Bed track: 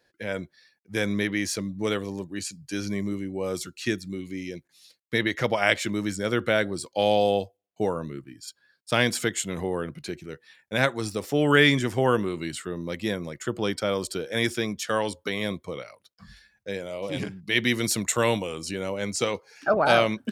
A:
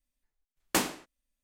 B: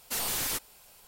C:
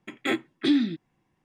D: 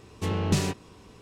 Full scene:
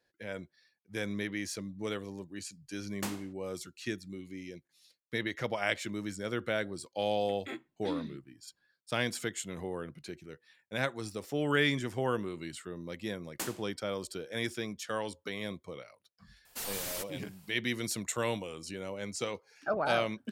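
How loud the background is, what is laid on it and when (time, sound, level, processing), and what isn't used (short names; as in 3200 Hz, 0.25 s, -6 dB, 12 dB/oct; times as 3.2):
bed track -9.5 dB
2.28 add A -11.5 dB
7.21 add C -15.5 dB
12.65 add A -14.5 dB + high shelf 4500 Hz +7.5 dB
16.45 add B -7 dB
not used: D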